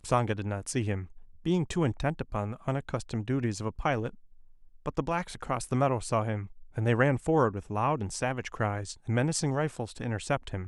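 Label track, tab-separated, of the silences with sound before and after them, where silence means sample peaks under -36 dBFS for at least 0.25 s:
1.040000	1.460000	silence
4.090000	4.860000	silence
6.450000	6.770000	silence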